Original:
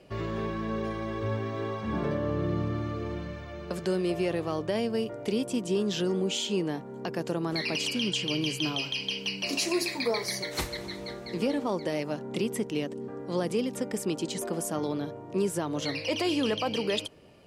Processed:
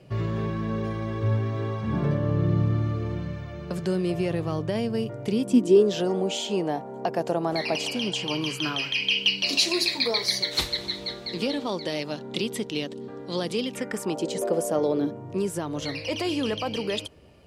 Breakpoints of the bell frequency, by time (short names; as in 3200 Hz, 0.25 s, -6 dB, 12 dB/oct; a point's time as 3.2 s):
bell +13 dB 0.85 oct
5.29 s 130 Hz
6.03 s 710 Hz
8.12 s 710 Hz
9.43 s 3800 Hz
13.63 s 3800 Hz
14.25 s 530 Hz
14.92 s 530 Hz
15.41 s 68 Hz